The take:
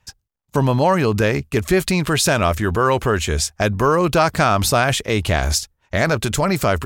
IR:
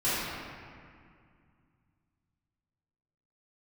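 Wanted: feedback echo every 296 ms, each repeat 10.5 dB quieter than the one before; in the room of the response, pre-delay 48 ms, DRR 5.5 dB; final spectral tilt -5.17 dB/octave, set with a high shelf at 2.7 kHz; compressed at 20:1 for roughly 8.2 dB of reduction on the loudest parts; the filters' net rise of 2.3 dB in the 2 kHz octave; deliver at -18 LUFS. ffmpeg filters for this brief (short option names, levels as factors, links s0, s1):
-filter_complex "[0:a]equalizer=f=2000:t=o:g=6,highshelf=f=2700:g=-7,acompressor=threshold=0.112:ratio=20,aecho=1:1:296|592|888:0.299|0.0896|0.0269,asplit=2[s0][s1];[1:a]atrim=start_sample=2205,adelay=48[s2];[s1][s2]afir=irnorm=-1:irlink=0,volume=0.126[s3];[s0][s3]amix=inputs=2:normalize=0,volume=1.78"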